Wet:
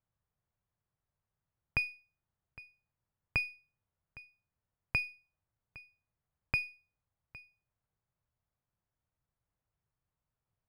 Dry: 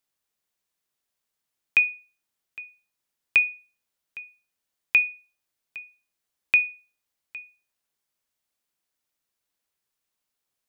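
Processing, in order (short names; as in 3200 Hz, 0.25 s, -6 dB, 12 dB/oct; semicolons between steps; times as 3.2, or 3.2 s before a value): LPF 1200 Hz 12 dB/oct; resonant low shelf 180 Hz +13 dB, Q 1.5; running maximum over 3 samples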